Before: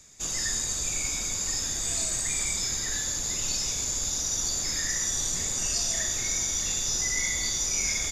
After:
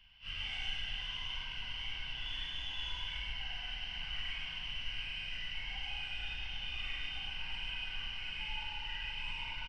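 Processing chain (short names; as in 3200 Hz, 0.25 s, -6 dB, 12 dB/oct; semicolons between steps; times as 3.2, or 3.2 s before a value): HPF 46 Hz 6 dB/oct; passive tone stack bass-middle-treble 10-0-1; vocal rider 2 s; flange 1.8 Hz, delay 5.3 ms, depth 5.3 ms, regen -9%; soft clip -39.5 dBFS, distortion -25 dB; plain phase-vocoder stretch 0.51×; chorus voices 2, 0.37 Hz, delay 16 ms, depth 1.8 ms; doubler 44 ms -4 dB; band-limited delay 0.14 s, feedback 72%, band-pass 1300 Hz, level -5 dB; speed mistake 78 rpm record played at 33 rpm; gain +16.5 dB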